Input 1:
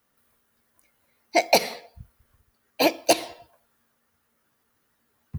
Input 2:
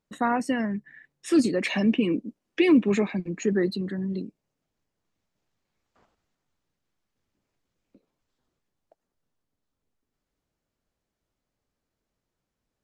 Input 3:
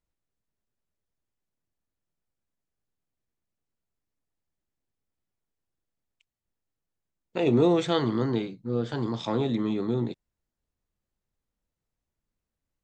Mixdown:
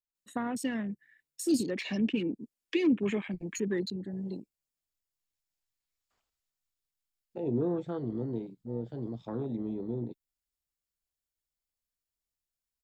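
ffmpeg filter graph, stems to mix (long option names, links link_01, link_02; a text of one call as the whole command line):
ffmpeg -i stem1.wav -i stem2.wav -i stem3.wav -filter_complex "[1:a]deesser=0.7,asubboost=boost=3.5:cutoff=86,crystalizer=i=9.5:c=0,adelay=150,volume=-5.5dB[link_01];[2:a]volume=-7.5dB[link_02];[link_01][link_02]amix=inputs=2:normalize=0,bandreject=frequency=6100:width=14,afwtdn=0.0178,acrossover=split=450[link_03][link_04];[link_04]acompressor=threshold=-42dB:ratio=3[link_05];[link_03][link_05]amix=inputs=2:normalize=0" out.wav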